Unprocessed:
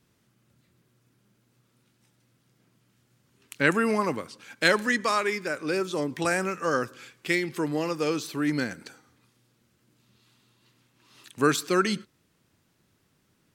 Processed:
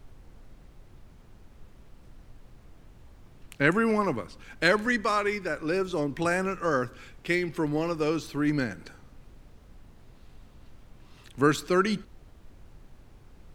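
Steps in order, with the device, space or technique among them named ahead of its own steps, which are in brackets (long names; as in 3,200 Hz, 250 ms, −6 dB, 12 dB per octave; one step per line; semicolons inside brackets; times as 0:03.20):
car interior (parametric band 110 Hz +5 dB 0.77 octaves; high-shelf EQ 3,700 Hz −8 dB; brown noise bed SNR 18 dB)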